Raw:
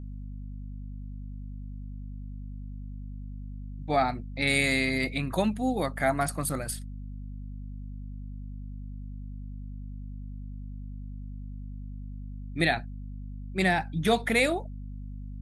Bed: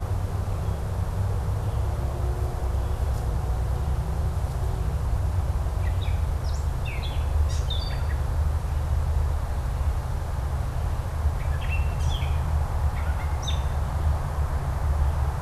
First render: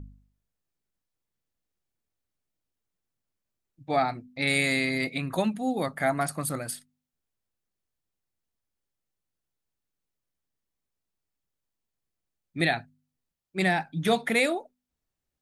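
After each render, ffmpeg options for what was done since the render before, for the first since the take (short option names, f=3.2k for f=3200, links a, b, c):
-af "bandreject=f=50:t=h:w=4,bandreject=f=100:t=h:w=4,bandreject=f=150:t=h:w=4,bandreject=f=200:t=h:w=4,bandreject=f=250:t=h:w=4"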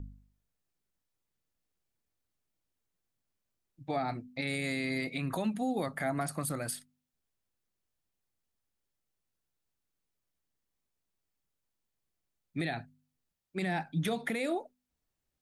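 -filter_complex "[0:a]acrossover=split=490[a][b];[b]acompressor=threshold=-28dB:ratio=6[c];[a][c]amix=inputs=2:normalize=0,alimiter=limit=-23.5dB:level=0:latency=1:release=109"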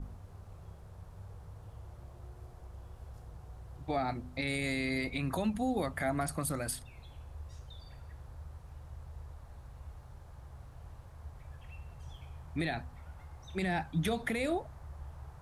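-filter_complex "[1:a]volume=-22.5dB[a];[0:a][a]amix=inputs=2:normalize=0"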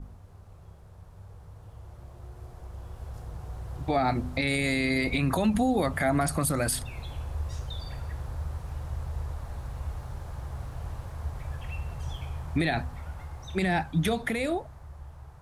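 -af "dynaudnorm=f=570:g=11:m=13dB,alimiter=limit=-16.5dB:level=0:latency=1:release=91"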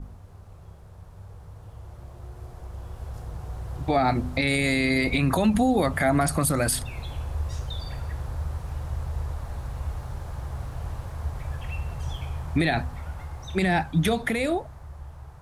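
-af "volume=3.5dB"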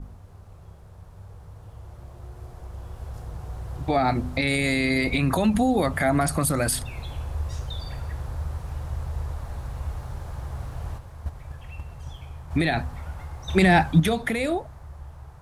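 -filter_complex "[0:a]asplit=3[a][b][c];[a]afade=t=out:st=10.97:d=0.02[d];[b]agate=range=-7dB:threshold=-28dB:ratio=16:release=100:detection=peak,afade=t=in:st=10.97:d=0.02,afade=t=out:st=12.5:d=0.02[e];[c]afade=t=in:st=12.5:d=0.02[f];[d][e][f]amix=inputs=3:normalize=0,asettb=1/sr,asplit=3[g][h][i];[g]atrim=end=13.484[j];[h]atrim=start=13.48:end=14,asetpts=PTS-STARTPTS,afade=t=in:d=0.004:c=qsin,afade=t=out:st=0.516:d=0.004:c=qsin,acontrast=57[k];[i]atrim=start=13.996[l];[j][k]acrossfade=d=0.004:c1=hsin:c2=qsin[m];[m][l]acrossfade=d=0.004:c1=qsin:c2=hsin"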